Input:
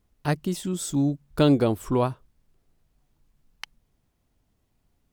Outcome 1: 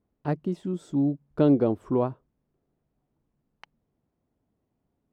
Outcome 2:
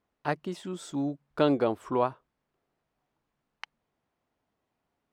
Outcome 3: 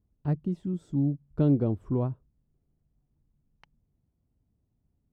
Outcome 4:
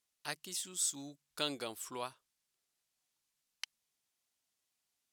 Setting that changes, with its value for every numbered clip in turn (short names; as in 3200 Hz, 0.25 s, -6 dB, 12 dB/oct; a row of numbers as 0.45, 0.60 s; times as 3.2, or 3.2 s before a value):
band-pass, frequency: 340, 990, 110, 7500 Hz